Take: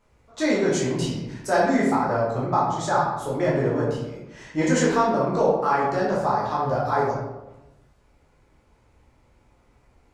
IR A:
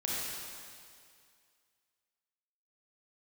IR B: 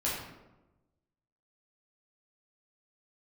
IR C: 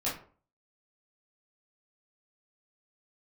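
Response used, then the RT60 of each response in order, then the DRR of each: B; 2.2 s, 1.0 s, 0.45 s; -6.0 dB, -7.0 dB, -8.5 dB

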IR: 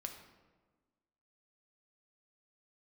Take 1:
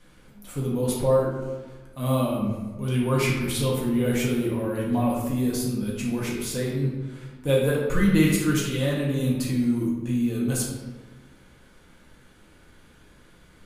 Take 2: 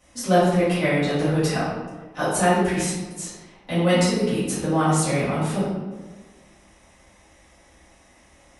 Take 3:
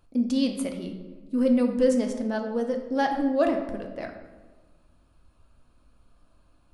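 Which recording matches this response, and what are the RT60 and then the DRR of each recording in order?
3; 1.4 s, 1.4 s, 1.4 s; -5.0 dB, -14.5 dB, 3.5 dB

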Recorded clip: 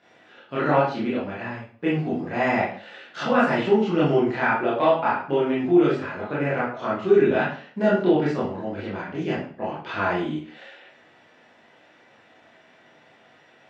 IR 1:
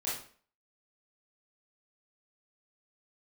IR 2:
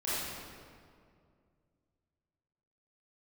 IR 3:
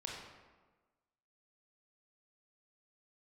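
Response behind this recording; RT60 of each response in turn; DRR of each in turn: 1; 0.45 s, 2.2 s, 1.3 s; -8.5 dB, -12.0 dB, -2.5 dB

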